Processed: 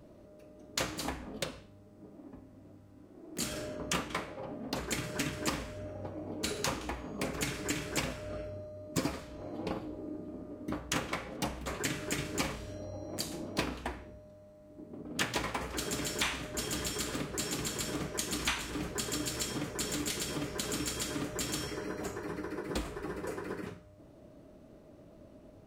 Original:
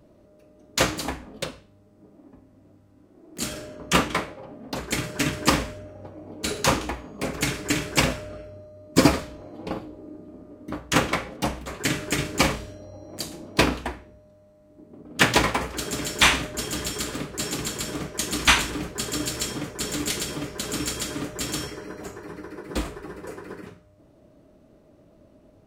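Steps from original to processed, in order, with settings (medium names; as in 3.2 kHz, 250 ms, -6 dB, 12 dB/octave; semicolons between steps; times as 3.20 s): compression 4:1, threshold -33 dBFS, peak gain reduction 18.5 dB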